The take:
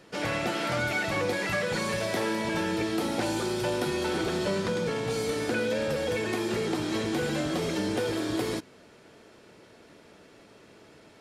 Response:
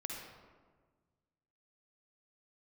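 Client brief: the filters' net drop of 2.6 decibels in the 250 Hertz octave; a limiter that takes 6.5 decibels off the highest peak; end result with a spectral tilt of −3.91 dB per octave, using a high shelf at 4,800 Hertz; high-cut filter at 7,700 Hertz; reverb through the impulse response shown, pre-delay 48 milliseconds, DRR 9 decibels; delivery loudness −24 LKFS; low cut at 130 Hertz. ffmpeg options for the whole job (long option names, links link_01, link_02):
-filter_complex "[0:a]highpass=130,lowpass=7700,equalizer=frequency=250:width_type=o:gain=-3.5,highshelf=frequency=4800:gain=3.5,alimiter=limit=-23.5dB:level=0:latency=1,asplit=2[link_01][link_02];[1:a]atrim=start_sample=2205,adelay=48[link_03];[link_02][link_03]afir=irnorm=-1:irlink=0,volume=-9dB[link_04];[link_01][link_04]amix=inputs=2:normalize=0,volume=7.5dB"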